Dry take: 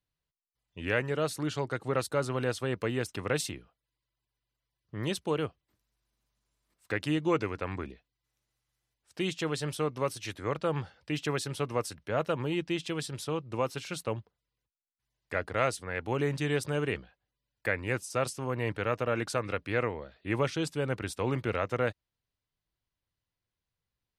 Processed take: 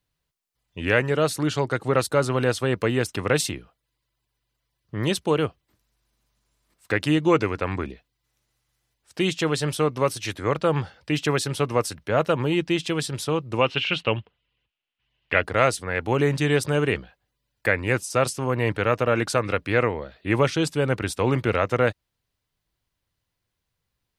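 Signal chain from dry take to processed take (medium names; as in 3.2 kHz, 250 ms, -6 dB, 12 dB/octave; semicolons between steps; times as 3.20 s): 13.61–15.43 s: resonant low-pass 2.9 kHz, resonance Q 5.1; trim +8.5 dB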